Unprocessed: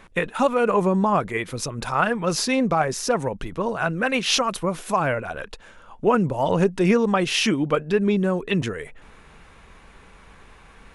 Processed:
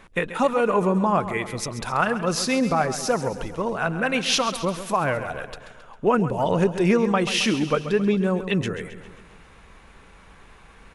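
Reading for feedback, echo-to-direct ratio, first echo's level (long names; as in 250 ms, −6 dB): 56%, −11.0 dB, −12.5 dB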